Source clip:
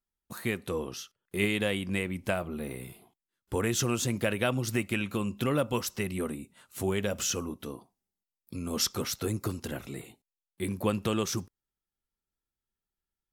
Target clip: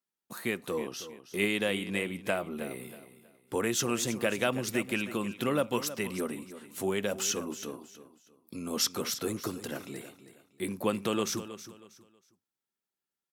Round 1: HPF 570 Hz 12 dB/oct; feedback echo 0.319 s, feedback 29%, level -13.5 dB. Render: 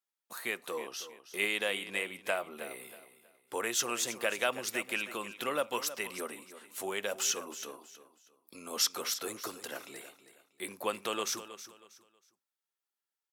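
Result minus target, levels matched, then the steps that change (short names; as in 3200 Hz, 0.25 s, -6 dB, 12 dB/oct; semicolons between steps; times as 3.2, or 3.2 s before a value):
250 Hz band -9.5 dB
change: HPF 190 Hz 12 dB/oct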